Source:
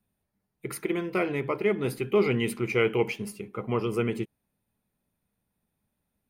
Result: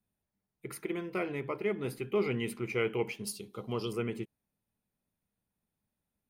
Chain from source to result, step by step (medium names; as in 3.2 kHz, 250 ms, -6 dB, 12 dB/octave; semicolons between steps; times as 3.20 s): 3.24–3.93 s: resonant high shelf 2.9 kHz +10.5 dB, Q 3; trim -7 dB